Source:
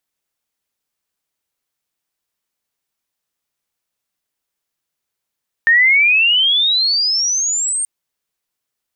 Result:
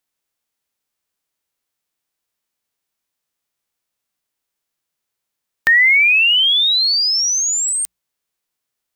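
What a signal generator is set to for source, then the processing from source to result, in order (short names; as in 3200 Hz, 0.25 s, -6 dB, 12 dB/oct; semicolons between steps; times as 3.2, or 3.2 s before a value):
chirp logarithmic 1800 Hz -> 8800 Hz -7.5 dBFS -> -16.5 dBFS 2.18 s
spectral whitening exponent 0.6; notches 60/120/180 Hz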